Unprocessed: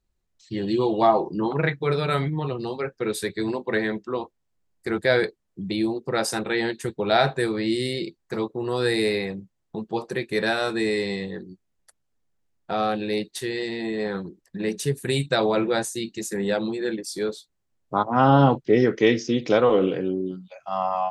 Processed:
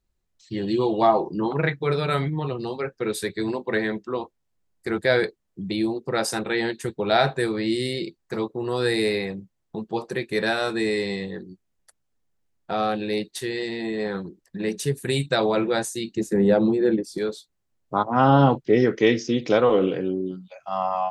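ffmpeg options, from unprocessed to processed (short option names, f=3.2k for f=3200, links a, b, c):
-filter_complex "[0:a]asettb=1/sr,asplit=3[a][b][c];[a]atrim=end=16.154[d];[b]atrim=start=16.15:end=17.18,asetpts=PTS-STARTPTS,afade=t=in:d=0.004:c=qsin,afade=t=out:st=1.026:d=0.004:c=qsin,tiltshelf=f=1.3k:g=8.5[e];[c]atrim=start=17.176[f];[d][e]acrossfade=d=0.004:c1=hsin:c2=qsin[g];[g][f]acrossfade=d=0.004:c1=qsin:c2=hsin"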